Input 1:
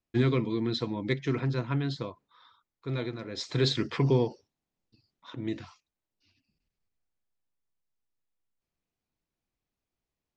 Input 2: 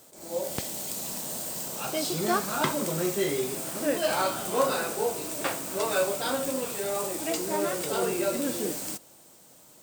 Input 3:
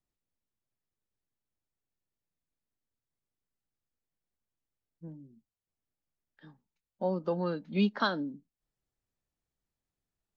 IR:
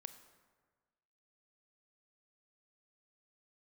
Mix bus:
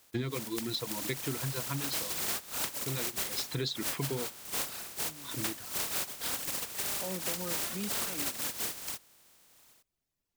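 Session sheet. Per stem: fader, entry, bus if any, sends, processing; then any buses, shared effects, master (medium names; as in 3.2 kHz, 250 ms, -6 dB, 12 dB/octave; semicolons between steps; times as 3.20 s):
-0.5 dB, 0.00 s, no send, reverb removal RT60 1.8 s; treble shelf 3.8 kHz +10.5 dB
-8.0 dB, 0.00 s, no send, spectral contrast reduction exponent 0.16; reverb removal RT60 1.8 s; level rider gain up to 13 dB
-3.0 dB, 0.00 s, no send, peak limiter -24.5 dBFS, peak gain reduction 10.5 dB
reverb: none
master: compression, threshold -31 dBFS, peak gain reduction 11.5 dB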